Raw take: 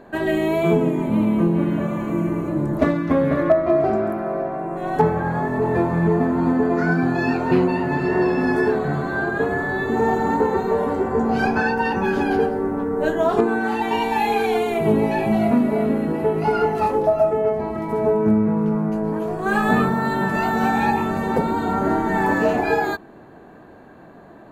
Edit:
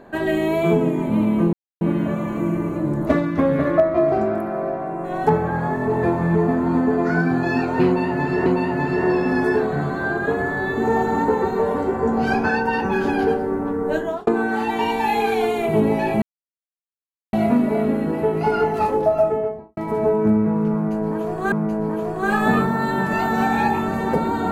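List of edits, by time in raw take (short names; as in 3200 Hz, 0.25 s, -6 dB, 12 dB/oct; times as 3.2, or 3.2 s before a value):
1.53 insert silence 0.28 s
7.58–8.18 loop, 2 plays
12.91–13.39 fade out equal-power
15.34 insert silence 1.11 s
17.26–17.78 studio fade out
18.75–19.53 loop, 2 plays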